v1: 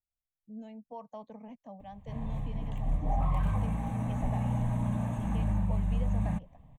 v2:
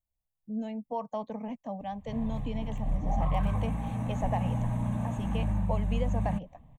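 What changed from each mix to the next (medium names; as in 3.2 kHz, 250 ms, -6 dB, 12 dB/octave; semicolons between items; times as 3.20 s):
speech +10.0 dB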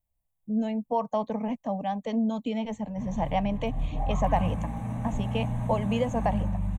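speech +7.0 dB; background: entry +0.90 s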